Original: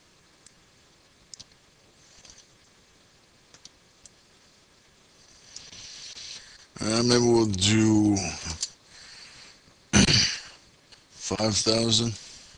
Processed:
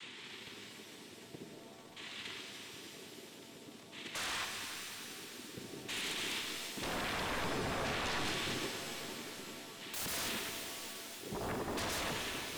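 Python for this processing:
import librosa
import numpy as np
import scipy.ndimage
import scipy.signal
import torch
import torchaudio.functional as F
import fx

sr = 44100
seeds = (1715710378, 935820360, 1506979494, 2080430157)

y = fx.lower_of_two(x, sr, delay_ms=1.0)
y = fx.env_lowpass_down(y, sr, base_hz=1600.0, full_db=-22.5)
y = fx.low_shelf(y, sr, hz=470.0, db=-10.5)
y = fx.rider(y, sr, range_db=4, speed_s=0.5)
y = fx.vowel_filter(y, sr, vowel='i')
y = fx.spec_paint(y, sr, seeds[0], shape='noise', start_s=4.14, length_s=0.31, low_hz=1400.0, high_hz=3200.0, level_db=-55.0)
y = fx.filter_lfo_lowpass(y, sr, shape='saw_down', hz=0.51, low_hz=210.0, high_hz=3200.0, q=0.77)
y = fx.dmg_crackle(y, sr, seeds[1], per_s=120.0, level_db=-61.0)
y = fx.noise_vocoder(y, sr, seeds[2], bands=6)
y = fx.fold_sine(y, sr, drive_db=19, ceiling_db=-38.5)
y = fx.echo_thinned(y, sr, ms=292, feedback_pct=84, hz=790.0, wet_db=-11.0)
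y = fx.rev_shimmer(y, sr, seeds[3], rt60_s=2.2, semitones=7, shimmer_db=-2, drr_db=5.0)
y = y * 10.0 ** (2.0 / 20.0)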